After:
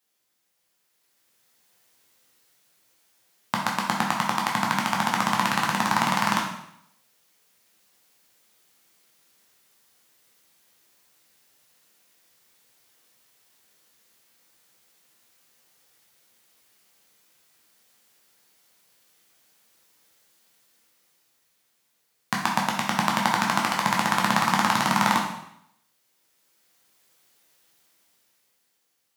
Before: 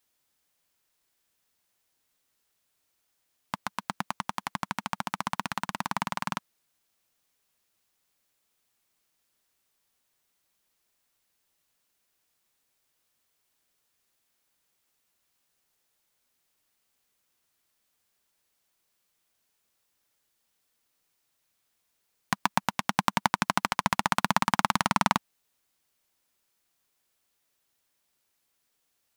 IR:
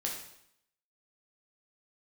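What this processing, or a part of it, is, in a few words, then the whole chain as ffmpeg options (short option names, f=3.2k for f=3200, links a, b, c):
far laptop microphone: -filter_complex "[1:a]atrim=start_sample=2205[a];[0:a][a]afir=irnorm=-1:irlink=0,highpass=f=100:w=0.5412,highpass=f=100:w=1.3066,dynaudnorm=f=290:g=9:m=11dB,volume=-1dB"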